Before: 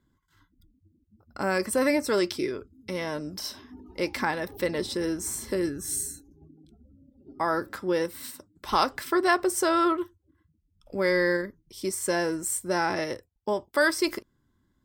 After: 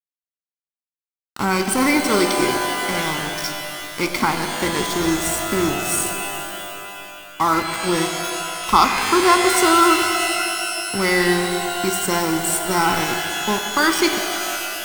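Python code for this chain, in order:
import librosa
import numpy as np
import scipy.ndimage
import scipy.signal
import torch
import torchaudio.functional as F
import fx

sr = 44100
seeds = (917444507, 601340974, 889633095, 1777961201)

y = x + 0.75 * np.pad(x, (int(0.9 * sr / 1000.0), 0))[:len(x)]
y = np.where(np.abs(y) >= 10.0 ** (-30.5 / 20.0), y, 0.0)
y = fx.rev_shimmer(y, sr, seeds[0], rt60_s=2.8, semitones=12, shimmer_db=-2, drr_db=5.5)
y = y * librosa.db_to_amplitude(6.5)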